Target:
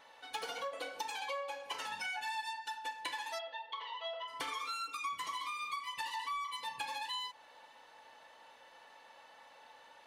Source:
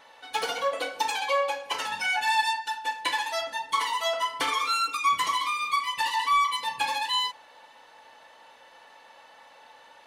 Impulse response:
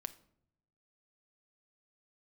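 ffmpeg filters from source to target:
-filter_complex "[0:a]acompressor=threshold=-32dB:ratio=4,asplit=3[a][b][c];[a]afade=t=out:st=3.38:d=0.02[d];[b]highpass=f=440:w=0.5412,highpass=f=440:w=1.3066,equalizer=f=510:t=q:w=4:g=4,equalizer=f=1k:t=q:w=4:g=-3,equalizer=f=1.4k:t=q:w=4:g=-7,equalizer=f=2.2k:t=q:w=4:g=-6,equalizer=f=3.3k:t=q:w=4:g=4,lowpass=f=3.4k:w=0.5412,lowpass=f=3.4k:w=1.3066,afade=t=in:st=3.38:d=0.02,afade=t=out:st=4.27:d=0.02[e];[c]afade=t=in:st=4.27:d=0.02[f];[d][e][f]amix=inputs=3:normalize=0,volume=-6dB"

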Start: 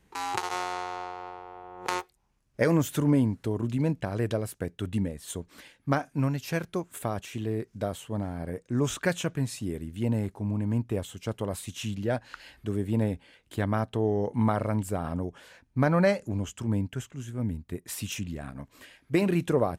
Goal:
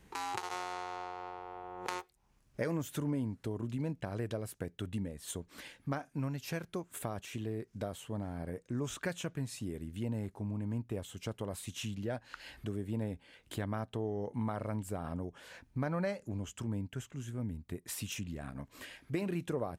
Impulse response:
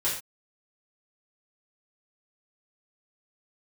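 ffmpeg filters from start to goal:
-af "acompressor=threshold=-48dB:ratio=2,volume=3.5dB"

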